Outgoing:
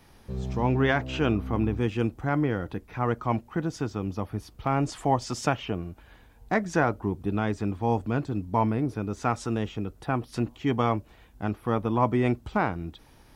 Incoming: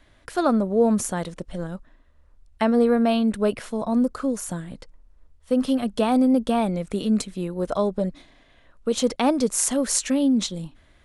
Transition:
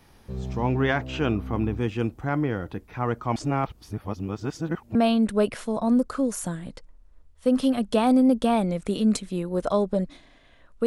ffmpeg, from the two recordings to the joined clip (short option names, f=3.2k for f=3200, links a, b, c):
-filter_complex "[0:a]apad=whole_dur=10.86,atrim=end=10.86,asplit=2[a][b];[a]atrim=end=3.362[c];[b]atrim=start=3.358:end=4.952,asetpts=PTS-STARTPTS,areverse[d];[1:a]atrim=start=2.998:end=8.91[e];[c][d]acrossfade=d=0.004:c1=hsin:c2=hsin[f];[f][e]acrossfade=d=0.004:c1=hsin:c2=hsin"